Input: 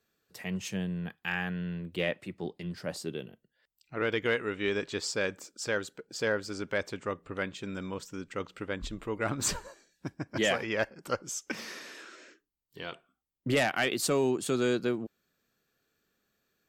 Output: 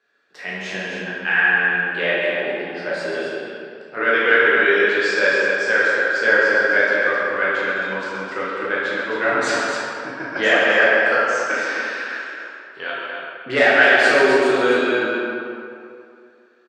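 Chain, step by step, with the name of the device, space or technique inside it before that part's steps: station announcement (band-pass 390–3900 Hz; peaking EQ 1.6 kHz +9.5 dB 0.39 oct; loudspeakers at several distances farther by 46 m -10 dB, 89 m -7 dB; reverberation RT60 2.5 s, pre-delay 11 ms, DRR -7.5 dB); trim +5 dB

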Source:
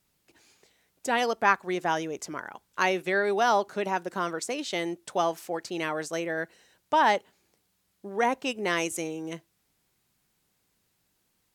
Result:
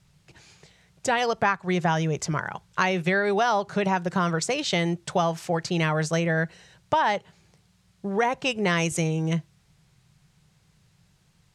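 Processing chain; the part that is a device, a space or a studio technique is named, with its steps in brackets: jukebox (low-pass 7.4 kHz 12 dB/octave; resonant low shelf 200 Hz +8 dB, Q 3; compression 4:1, threshold -29 dBFS, peak gain reduction 11 dB); trim +8.5 dB

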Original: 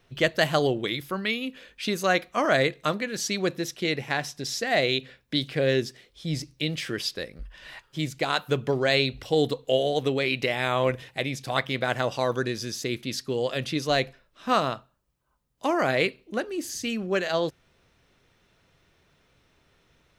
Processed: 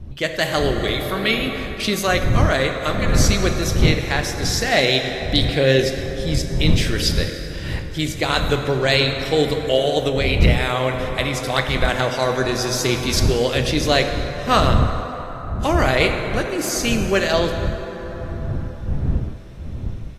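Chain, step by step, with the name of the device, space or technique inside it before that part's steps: treble shelf 3.4 kHz +5.5 dB; plate-style reverb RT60 4.4 s, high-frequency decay 0.45×, DRR 5 dB; smartphone video outdoors (wind noise 100 Hz -27 dBFS; level rider gain up to 9 dB; trim -1 dB; AAC 48 kbps 32 kHz)

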